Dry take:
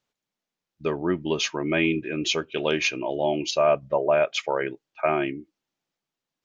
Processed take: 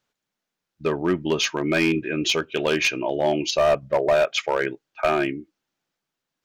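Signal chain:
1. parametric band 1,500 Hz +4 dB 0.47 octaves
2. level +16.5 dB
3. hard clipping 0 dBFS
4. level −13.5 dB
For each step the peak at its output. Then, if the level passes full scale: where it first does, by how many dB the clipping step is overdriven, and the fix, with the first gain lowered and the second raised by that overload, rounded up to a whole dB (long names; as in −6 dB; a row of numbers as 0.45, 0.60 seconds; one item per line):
−7.5, +9.0, 0.0, −13.5 dBFS
step 2, 9.0 dB
step 2 +7.5 dB, step 4 −4.5 dB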